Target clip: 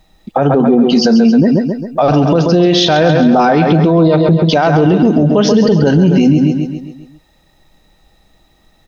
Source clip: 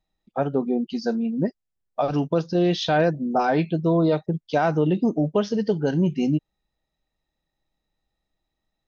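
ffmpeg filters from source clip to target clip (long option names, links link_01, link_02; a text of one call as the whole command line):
ffmpeg -i in.wav -af "acompressor=threshold=-31dB:ratio=2,aecho=1:1:134|268|402|536|670|804:0.355|0.174|0.0852|0.0417|0.0205|0.01,alimiter=level_in=28.5dB:limit=-1dB:release=50:level=0:latency=1,volume=-1.5dB" out.wav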